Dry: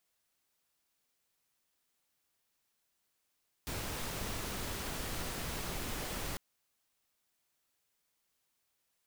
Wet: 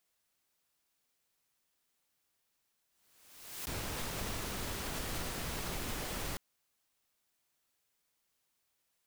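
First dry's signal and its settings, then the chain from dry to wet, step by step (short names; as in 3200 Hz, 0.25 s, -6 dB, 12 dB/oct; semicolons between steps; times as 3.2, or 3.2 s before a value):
noise pink, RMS -39 dBFS 2.70 s
backwards sustainer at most 52 dB/s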